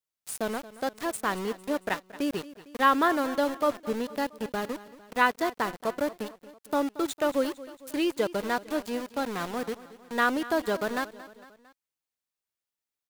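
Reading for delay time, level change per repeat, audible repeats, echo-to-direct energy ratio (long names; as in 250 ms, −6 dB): 227 ms, −5.0 dB, 3, −15.5 dB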